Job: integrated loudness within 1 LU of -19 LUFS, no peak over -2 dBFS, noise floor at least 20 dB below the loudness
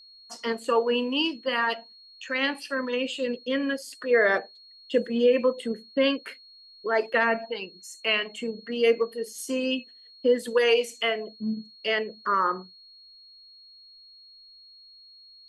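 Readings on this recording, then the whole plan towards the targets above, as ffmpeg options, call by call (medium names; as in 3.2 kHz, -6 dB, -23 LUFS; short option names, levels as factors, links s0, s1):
steady tone 4.3 kHz; tone level -49 dBFS; loudness -26.5 LUFS; peak level -11.0 dBFS; loudness target -19.0 LUFS
-> -af "bandreject=f=4300:w=30"
-af "volume=2.37"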